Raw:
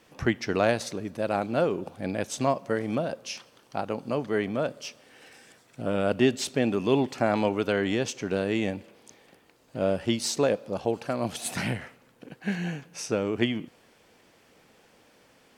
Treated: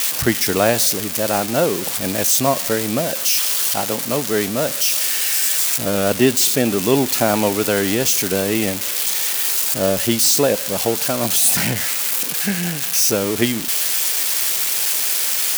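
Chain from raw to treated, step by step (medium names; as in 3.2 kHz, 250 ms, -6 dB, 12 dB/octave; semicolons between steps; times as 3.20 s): zero-crossing glitches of -17 dBFS; trim +7 dB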